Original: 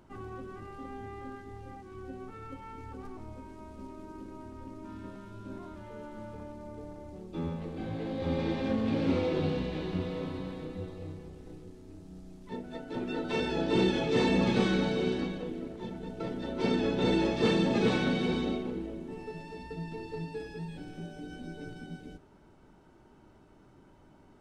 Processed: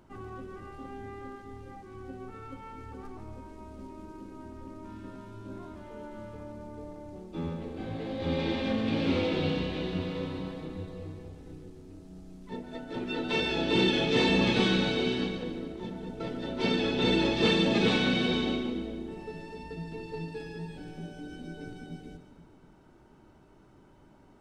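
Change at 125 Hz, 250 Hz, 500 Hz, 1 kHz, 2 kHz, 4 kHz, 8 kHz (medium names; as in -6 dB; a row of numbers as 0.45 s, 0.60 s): +0.5 dB, +1.0 dB, +0.5 dB, +1.0 dB, +5.0 dB, +8.0 dB, +3.0 dB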